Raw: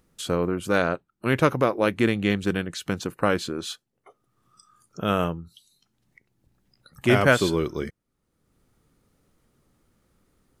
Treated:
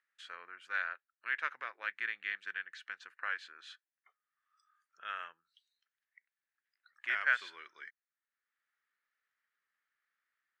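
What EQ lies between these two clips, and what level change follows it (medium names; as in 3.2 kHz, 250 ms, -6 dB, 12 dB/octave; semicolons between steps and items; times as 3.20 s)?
ladder band-pass 1.9 kHz, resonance 65%; -1.5 dB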